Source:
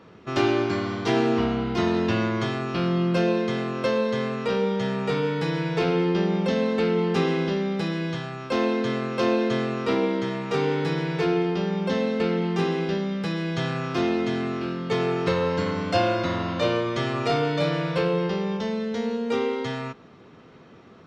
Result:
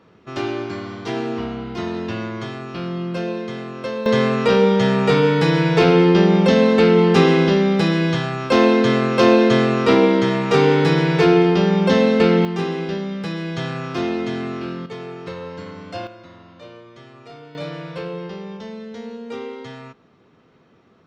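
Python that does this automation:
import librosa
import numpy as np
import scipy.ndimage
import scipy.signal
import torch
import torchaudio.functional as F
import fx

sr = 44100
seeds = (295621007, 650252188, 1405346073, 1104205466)

y = fx.gain(x, sr, db=fx.steps((0.0, -3.0), (4.06, 9.5), (12.45, 1.0), (14.86, -8.5), (16.07, -17.5), (17.55, -6.0)))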